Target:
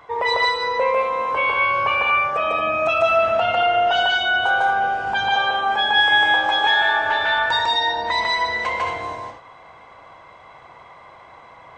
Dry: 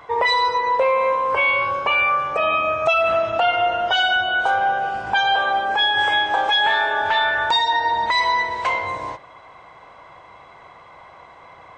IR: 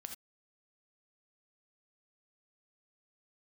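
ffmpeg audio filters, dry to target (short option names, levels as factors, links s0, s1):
-filter_complex "[0:a]asplit=2[s0][s1];[1:a]atrim=start_sample=2205,adelay=150[s2];[s1][s2]afir=irnorm=-1:irlink=0,volume=1.78[s3];[s0][s3]amix=inputs=2:normalize=0,volume=0.668"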